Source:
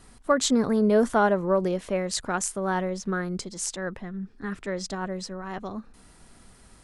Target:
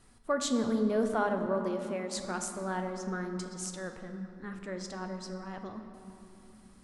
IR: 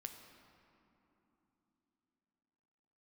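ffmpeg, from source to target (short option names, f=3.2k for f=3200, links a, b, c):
-filter_complex "[0:a]asettb=1/sr,asplit=3[a][b][c];[a]atrim=end=1.464[d];[b]atrim=start=1.46:end=2.14,asetpts=PTS-STARTPTS,afade=t=in:d=0.004:c=qsin,afade=t=out:st=0.676:d=0.004:c=qsin,highpass=230[e];[c]atrim=start=2.136[f];[d][e]acrossfade=d=0.004:c1=hsin:c2=qsin[g];[g][f]acrossfade=d=0.004:c1=qsin:c2=hsin[h];[1:a]atrim=start_sample=2205[i];[h][i]afir=irnorm=-1:irlink=0,volume=-3.5dB"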